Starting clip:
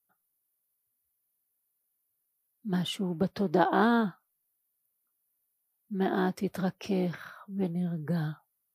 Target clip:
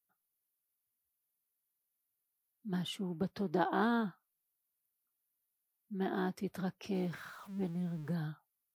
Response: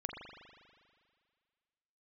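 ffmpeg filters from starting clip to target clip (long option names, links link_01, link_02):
-filter_complex "[0:a]asettb=1/sr,asplit=3[link_01][link_02][link_03];[link_01]atrim=end=6.944[link_04];[link_02]atrim=start=6.94:end=8.15,asetpts=PTS-STARTPTS,afade=type=in:duration=0.004:curve=qsin,afade=type=out:start_time=1.206:duration=0.004:curve=qsin,aeval=exprs='val(0)+0.5*0.00631*sgn(val(0))':channel_layout=same[link_05];[link_03]atrim=start=8.146[link_06];[link_04][link_05]acrossfade=duration=0.004:curve1=hsin:curve2=qsin[link_07];[link_07][link_06]acrossfade=duration=0.004:curve1=qsin:curve2=hsin,equalizer=frequency=570:width=3.4:gain=-4,volume=-7dB"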